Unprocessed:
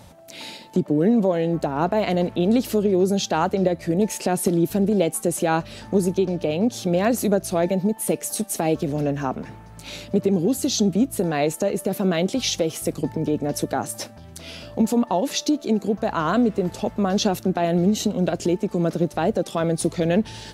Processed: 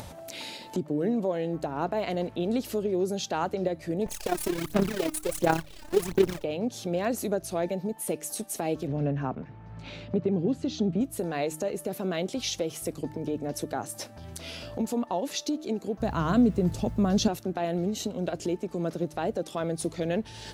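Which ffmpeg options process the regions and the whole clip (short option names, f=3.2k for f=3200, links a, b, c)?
-filter_complex "[0:a]asettb=1/sr,asplit=3[a][b][c];[a]atrim=end=4.064[d];[b]atrim=start=4.06:end=6.44,asetpts=PTS-STARTPTS,afade=t=in:d=0.004:c=qsin,afade=t=out:st=2.376:d=0.004:c=qsin,acrusher=bits=5:dc=4:mix=0:aa=0.000001,aphaser=in_gain=1:out_gain=1:delay=3.3:decay=0.7:speed=1.4:type=sinusoidal,tremolo=f=34:d=0.667[e];[c]atrim=start=6.436[f];[d][e]acrossfade=d=0.004:c1=hsin:c2=qsin[g];[g][f]acrossfade=d=0.004:c1=qsin:c2=hsin,asettb=1/sr,asplit=3[h][i][j];[h]atrim=end=8.874[k];[i]atrim=start=8.87:end=11.01,asetpts=PTS-STARTPTS,afade=t=in:d=0.004:c=qsin,afade=t=out:st=2.136:d=0.004:c=qsin,agate=range=-6dB:threshold=-34dB:ratio=16:release=100:detection=peak,lowpass=3.1k,equalizer=f=140:w=0.96:g=7[l];[j]atrim=start=11.006[m];[k][l]acrossfade=d=0.004:c1=hsin:c2=qsin[n];[n][m]acrossfade=d=0.004:c1=qsin:c2=hsin,asettb=1/sr,asplit=3[o][p][q];[o]atrim=end=16.004[r];[p]atrim=start=16:end=17.28,asetpts=PTS-STARTPTS,afade=t=in:d=0.004:c=qsin,afade=t=out:st=1.276:d=0.004:c=qsin,bass=f=250:g=15,treble=f=4k:g=4,acrusher=bits=8:mix=0:aa=0.5[s];[q]atrim=start=17.276[t];[r][s]acrossfade=d=0.004:c1=hsin:c2=qsin[u];[u][t]acrossfade=d=0.004:c1=qsin:c2=hsin,equalizer=f=200:t=o:w=0.42:g=-4.5,bandreject=f=154.6:t=h:w=4,bandreject=f=309.2:t=h:w=4,acompressor=mode=upward:threshold=-24dB:ratio=2.5,volume=-7.5dB"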